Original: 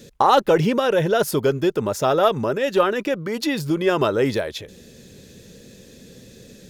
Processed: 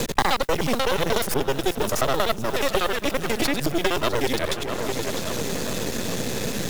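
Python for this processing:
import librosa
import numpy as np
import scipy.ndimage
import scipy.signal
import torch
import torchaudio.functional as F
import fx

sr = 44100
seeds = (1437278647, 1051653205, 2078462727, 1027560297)

y = fx.local_reverse(x, sr, ms=61.0)
y = fx.high_shelf(y, sr, hz=2900.0, db=11.5)
y = fx.echo_feedback(y, sr, ms=412, feedback_pct=58, wet_db=-20)
y = fx.mod_noise(y, sr, seeds[0], snr_db=23)
y = y + 10.0 ** (-18.0 / 20.0) * np.pad(y, (int(653 * sr / 1000.0), 0))[:len(y)]
y = np.maximum(y, 0.0)
y = fx.band_squash(y, sr, depth_pct=100)
y = y * 10.0 ** (-1.0 / 20.0)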